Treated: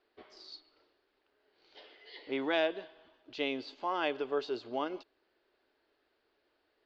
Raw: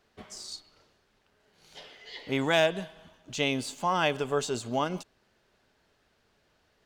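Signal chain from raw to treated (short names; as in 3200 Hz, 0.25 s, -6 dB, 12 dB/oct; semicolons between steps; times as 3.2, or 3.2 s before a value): elliptic low-pass 4700 Hz, stop band 70 dB; resonant low shelf 240 Hz -9.5 dB, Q 3; gain -7 dB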